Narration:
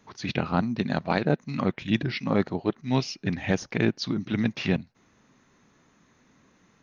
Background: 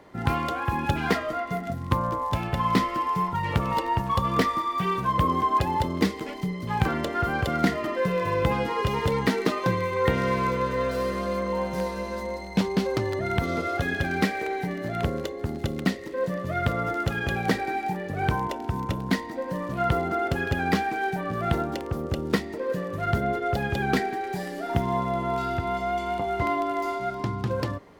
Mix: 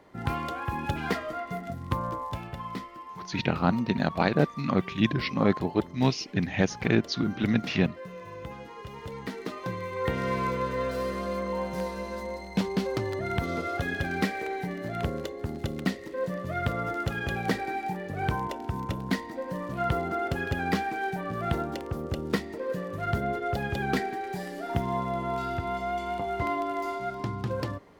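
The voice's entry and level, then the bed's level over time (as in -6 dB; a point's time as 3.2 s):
3.10 s, +0.5 dB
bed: 2.14 s -5 dB
2.9 s -16.5 dB
8.87 s -16.5 dB
10.36 s -3.5 dB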